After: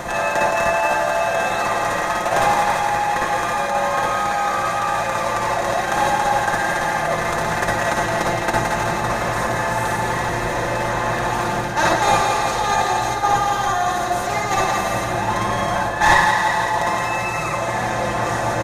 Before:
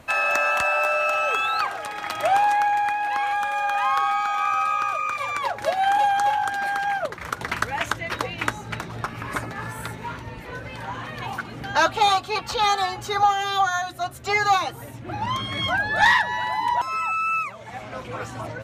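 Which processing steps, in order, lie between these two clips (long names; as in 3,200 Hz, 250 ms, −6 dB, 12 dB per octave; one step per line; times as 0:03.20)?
compressor on every frequency bin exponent 0.4
tilt shelving filter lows +5 dB, about 910 Hz
noise gate −12 dBFS, range −14 dB
comb filter 5.7 ms, depth 67%
feedback echo with a high-pass in the loop 168 ms, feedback 60%, level −6 dB
convolution reverb RT60 0.20 s, pre-delay 52 ms, DRR −2.5 dB
reversed playback
upward compression, threshold −10 dBFS
reversed playback
high shelf with overshoot 4,900 Hz +7.5 dB, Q 1.5
level −2 dB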